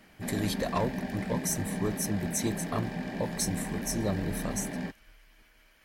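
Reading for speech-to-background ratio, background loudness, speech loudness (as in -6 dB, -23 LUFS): 2.5 dB, -36.0 LUFS, -33.5 LUFS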